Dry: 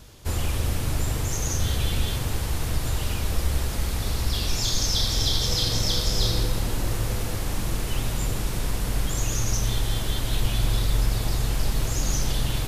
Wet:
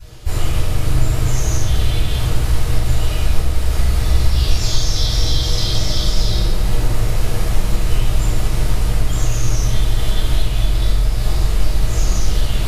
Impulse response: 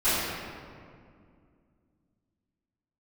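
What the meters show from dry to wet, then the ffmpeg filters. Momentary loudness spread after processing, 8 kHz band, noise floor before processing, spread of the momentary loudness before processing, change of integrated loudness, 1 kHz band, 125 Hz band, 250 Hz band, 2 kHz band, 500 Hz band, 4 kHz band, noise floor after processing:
3 LU, +1.5 dB, −29 dBFS, 6 LU, +6.5 dB, +5.0 dB, +7.5 dB, +4.5 dB, +4.5 dB, +5.5 dB, +3.0 dB, −20 dBFS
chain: -filter_complex "[0:a]acompressor=threshold=-23dB:ratio=6[link_01];[1:a]atrim=start_sample=2205,afade=type=out:start_time=0.35:duration=0.01,atrim=end_sample=15876,asetrate=83790,aresample=44100[link_02];[link_01][link_02]afir=irnorm=-1:irlink=0,volume=-2dB"

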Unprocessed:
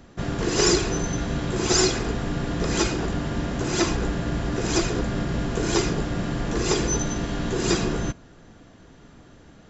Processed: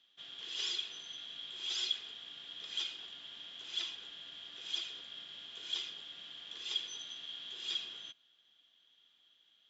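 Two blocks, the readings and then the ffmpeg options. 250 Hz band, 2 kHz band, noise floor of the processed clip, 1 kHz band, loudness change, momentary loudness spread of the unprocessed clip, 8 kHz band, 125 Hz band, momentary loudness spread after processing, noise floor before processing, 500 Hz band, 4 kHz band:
below −40 dB, −19.0 dB, −70 dBFS, −29.0 dB, −15.5 dB, 8 LU, can't be measured, below −40 dB, 11 LU, −50 dBFS, −37.0 dB, −5.5 dB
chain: -af "bandpass=frequency=3300:width_type=q:width=17:csg=0,volume=5dB"

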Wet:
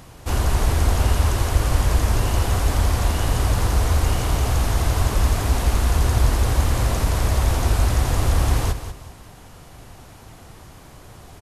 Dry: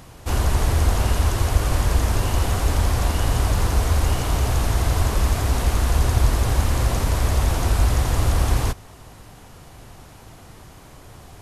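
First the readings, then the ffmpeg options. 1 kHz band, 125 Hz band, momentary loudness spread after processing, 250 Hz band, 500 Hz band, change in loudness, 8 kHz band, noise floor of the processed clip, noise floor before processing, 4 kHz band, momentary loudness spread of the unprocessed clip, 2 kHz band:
+0.5 dB, +0.5 dB, 2 LU, +0.5 dB, +0.5 dB, +0.5 dB, +0.5 dB, −44 dBFS, −44 dBFS, +0.5 dB, 2 LU, +0.5 dB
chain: -af "aecho=1:1:190|380|570:0.299|0.0896|0.0269"

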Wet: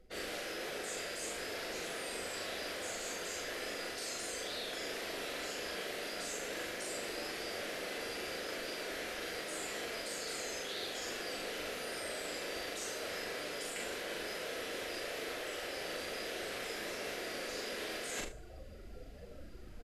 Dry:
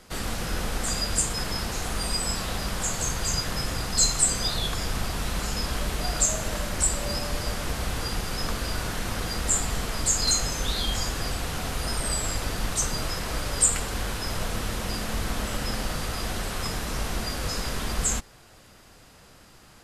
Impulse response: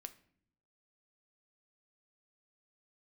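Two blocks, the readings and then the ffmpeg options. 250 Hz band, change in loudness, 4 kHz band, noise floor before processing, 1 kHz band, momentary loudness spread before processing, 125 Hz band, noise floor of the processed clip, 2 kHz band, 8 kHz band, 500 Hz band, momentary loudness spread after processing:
−13.0 dB, −12.5 dB, −11.0 dB, −52 dBFS, −11.5 dB, 8 LU, −26.5 dB, −49 dBFS, −6.0 dB, −18.0 dB, −5.0 dB, 1 LU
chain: -filter_complex "[0:a]afftdn=noise_reduction=21:noise_floor=-46,afftfilt=real='re*lt(hypot(re,im),0.112)':imag='im*lt(hypot(re,im),0.112)':win_size=1024:overlap=0.75,equalizer=frequency=125:width_type=o:width=1:gain=-11,equalizer=frequency=250:width_type=o:width=1:gain=-4,equalizer=frequency=500:width_type=o:width=1:gain=8,equalizer=frequency=1000:width_type=o:width=1:gain=-11,equalizer=frequency=2000:width_type=o:width=1:gain=5,equalizer=frequency=8000:width_type=o:width=1:gain=-5,areverse,acompressor=threshold=-49dB:ratio=12,areverse,asplit=2[link_01][link_02];[link_02]adelay=40,volume=-3dB[link_03];[link_01][link_03]amix=inputs=2:normalize=0,aecho=1:1:43|74:0.335|0.178,volume=8.5dB"

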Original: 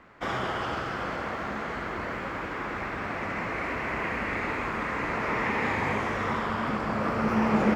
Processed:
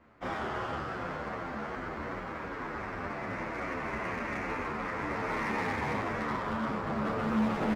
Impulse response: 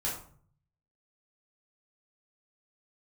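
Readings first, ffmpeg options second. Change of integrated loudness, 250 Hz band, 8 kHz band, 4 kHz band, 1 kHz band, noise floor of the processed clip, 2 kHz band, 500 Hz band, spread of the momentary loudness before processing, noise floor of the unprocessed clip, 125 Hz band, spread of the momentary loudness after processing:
−4.5 dB, −4.0 dB, −4.5 dB, −6.5 dB, −4.5 dB, −39 dBFS, −6.0 dB, −4.5 dB, 6 LU, −34 dBFS, −4.5 dB, 7 LU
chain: -filter_complex "[0:a]lowpass=frequency=2500:poles=1,aemphasis=mode=production:type=50kf,asplit=2[link_01][link_02];[link_02]adelay=27,volume=-6dB[link_03];[link_01][link_03]amix=inputs=2:normalize=0,asplit=2[link_04][link_05];[link_05]adynamicsmooth=sensitivity=4.5:basefreq=780,volume=-3dB[link_06];[link_04][link_06]amix=inputs=2:normalize=0,asoftclip=type=hard:threshold=-17dB,asplit=2[link_07][link_08];[link_08]adelay=9.7,afreqshift=-2.6[link_09];[link_07][link_09]amix=inputs=2:normalize=1,volume=-6dB"

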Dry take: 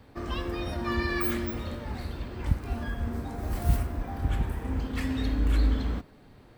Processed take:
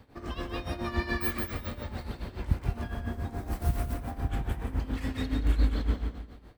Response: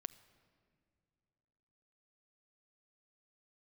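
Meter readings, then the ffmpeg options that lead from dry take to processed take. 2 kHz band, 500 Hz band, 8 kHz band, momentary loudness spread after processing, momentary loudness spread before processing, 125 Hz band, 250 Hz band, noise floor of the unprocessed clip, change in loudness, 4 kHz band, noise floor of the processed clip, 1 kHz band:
−2.0 dB, −3.0 dB, −2.5 dB, 10 LU, 9 LU, −1.5 dB, −3.0 dB, −54 dBFS, −2.0 dB, −2.5 dB, −50 dBFS, −2.0 dB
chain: -af "aecho=1:1:173|346|519|692:0.596|0.208|0.073|0.0255,tremolo=f=7.1:d=0.75"

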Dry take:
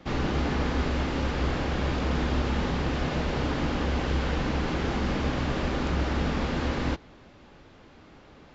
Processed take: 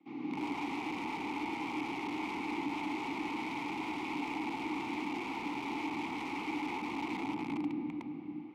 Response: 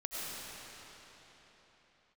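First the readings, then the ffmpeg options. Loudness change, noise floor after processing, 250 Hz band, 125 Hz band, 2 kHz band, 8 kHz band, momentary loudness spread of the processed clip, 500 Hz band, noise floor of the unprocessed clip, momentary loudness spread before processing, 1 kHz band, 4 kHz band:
−9.0 dB, −44 dBFS, −6.0 dB, −23.5 dB, −6.0 dB, can't be measured, 1 LU, −13.0 dB, −52 dBFS, 1 LU, −4.0 dB, −10.0 dB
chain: -filter_complex "[0:a]highpass=frequency=130:width=0.5412,highpass=frequency=130:width=1.3066,bandreject=frequency=920:width=11[link_01];[1:a]atrim=start_sample=2205,asetrate=38367,aresample=44100[link_02];[link_01][link_02]afir=irnorm=-1:irlink=0,acrossover=split=220[link_03][link_04];[link_03]dynaudnorm=framelen=280:gausssize=3:maxgain=14.5dB[link_05];[link_05][link_04]amix=inputs=2:normalize=0,aeval=exprs='(mod(8.91*val(0)+1,2)-1)/8.91':channel_layout=same,asplit=3[link_06][link_07][link_08];[link_06]bandpass=frequency=300:width_type=q:width=8,volume=0dB[link_09];[link_07]bandpass=frequency=870:width_type=q:width=8,volume=-6dB[link_10];[link_08]bandpass=frequency=2240:width_type=q:width=8,volume=-9dB[link_11];[link_09][link_10][link_11]amix=inputs=3:normalize=0"

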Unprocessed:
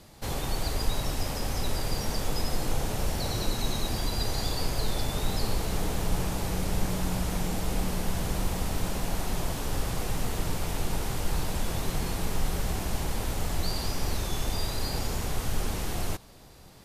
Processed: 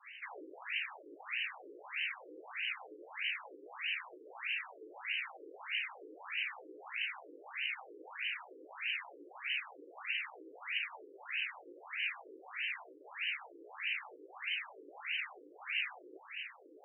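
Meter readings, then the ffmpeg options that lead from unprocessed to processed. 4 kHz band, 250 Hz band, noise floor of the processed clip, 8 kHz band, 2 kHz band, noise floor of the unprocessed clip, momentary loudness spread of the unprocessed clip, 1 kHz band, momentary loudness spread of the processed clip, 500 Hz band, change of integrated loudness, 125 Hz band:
−6.0 dB, −24.5 dB, −58 dBFS, below −40 dB, +3.0 dB, −50 dBFS, 2 LU, −13.5 dB, 12 LU, −17.5 dB, −7.5 dB, below −40 dB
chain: -af "areverse,acompressor=mode=upward:threshold=-26dB:ratio=2.5,areverse,equalizer=frequency=600:width_type=o:width=1.2:gain=-13.5,flanger=delay=15.5:depth=2:speed=2.1,aexciter=amount=6.4:drive=5.6:freq=2100,adynamicequalizer=threshold=0.00282:dfrequency=240:dqfactor=0.75:tfrequency=240:tqfactor=0.75:attack=5:release=100:ratio=0.375:range=4:mode=cutabove:tftype=bell,afftfilt=real='re*between(b*sr/1024,370*pow(2200/370,0.5+0.5*sin(2*PI*1.6*pts/sr))/1.41,370*pow(2200/370,0.5+0.5*sin(2*PI*1.6*pts/sr))*1.41)':imag='im*between(b*sr/1024,370*pow(2200/370,0.5+0.5*sin(2*PI*1.6*pts/sr))/1.41,370*pow(2200/370,0.5+0.5*sin(2*PI*1.6*pts/sr))*1.41)':win_size=1024:overlap=0.75,volume=3dB"

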